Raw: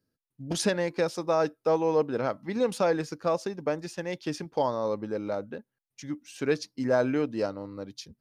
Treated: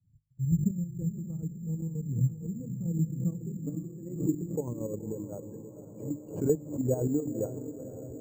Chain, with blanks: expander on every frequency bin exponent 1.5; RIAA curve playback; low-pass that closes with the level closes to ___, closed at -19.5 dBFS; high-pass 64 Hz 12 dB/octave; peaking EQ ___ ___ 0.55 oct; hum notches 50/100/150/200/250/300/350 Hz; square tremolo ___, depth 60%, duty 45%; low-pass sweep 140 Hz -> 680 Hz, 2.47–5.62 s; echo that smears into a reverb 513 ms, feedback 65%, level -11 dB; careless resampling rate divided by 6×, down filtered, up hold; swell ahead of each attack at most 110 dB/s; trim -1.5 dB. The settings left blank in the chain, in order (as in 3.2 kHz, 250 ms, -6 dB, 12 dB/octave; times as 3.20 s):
810 Hz, 630 Hz, -14 dB, 7.7 Hz